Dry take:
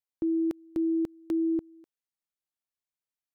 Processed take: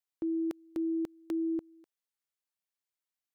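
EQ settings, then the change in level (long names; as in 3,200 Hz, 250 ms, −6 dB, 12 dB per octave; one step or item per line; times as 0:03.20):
low-shelf EQ 320 Hz −10 dB
0.0 dB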